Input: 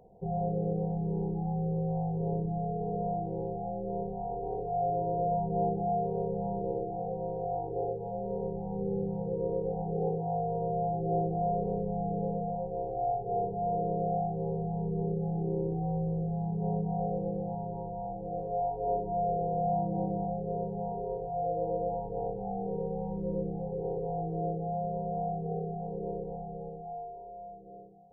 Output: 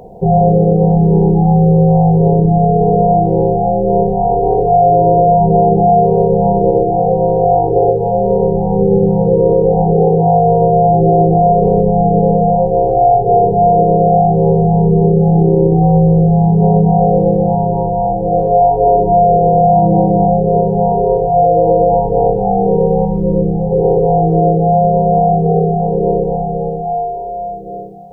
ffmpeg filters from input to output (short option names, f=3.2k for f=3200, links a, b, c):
-filter_complex "[0:a]asettb=1/sr,asplit=3[a][b][c];[a]atrim=end=23.054[d];[b]atrim=start=23.05:end=23.71,asetpts=PTS-STARTPTS,afade=t=in:d=0.004:c=qsin,afade=t=out:st=0.656:d=0.004:c=qsin,equalizer=f=690:t=o:w=2.5:g=-5[e];[c]atrim=start=23.706[f];[d][e]acrossfade=d=0.004:c1=hsin:c2=qsin[g];[g][f]acrossfade=d=0.004:c1=qsin:c2=hsin,bandreject=f=50:t=h:w=6,bandreject=f=100:t=h:w=6,bandreject=f=150:t=h:w=6,bandreject=f=200:t=h:w=6,alimiter=level_in=24dB:limit=-1dB:release=50:level=0:latency=1,volume=-1dB"